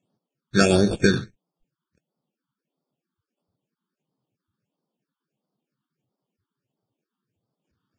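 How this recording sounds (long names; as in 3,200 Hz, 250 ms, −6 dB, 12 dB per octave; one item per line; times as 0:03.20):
aliases and images of a low sample rate 2,000 Hz, jitter 0%
phaser sweep stages 6, 1.5 Hz, lowest notch 590–2,400 Hz
Ogg Vorbis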